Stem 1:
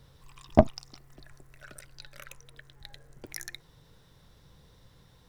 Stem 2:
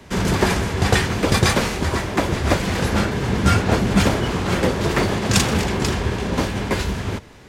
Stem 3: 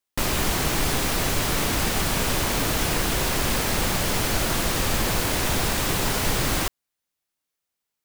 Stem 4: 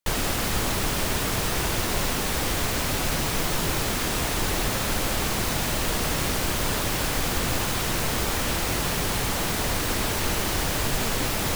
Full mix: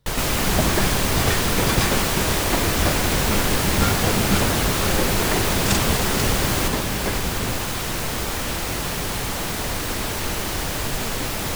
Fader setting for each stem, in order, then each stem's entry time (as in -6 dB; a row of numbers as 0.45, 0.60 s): -8.0, -5.5, 0.0, 0.0 dB; 0.00, 0.35, 0.00, 0.00 s